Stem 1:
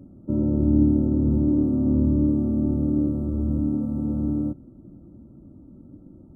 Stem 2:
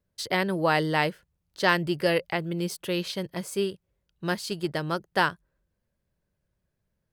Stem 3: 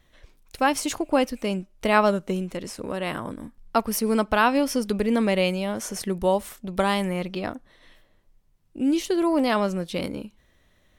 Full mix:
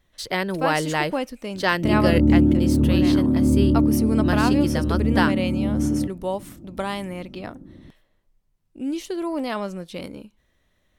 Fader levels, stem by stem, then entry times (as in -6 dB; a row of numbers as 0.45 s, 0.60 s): +2.5 dB, +1.0 dB, -5.0 dB; 1.55 s, 0.00 s, 0.00 s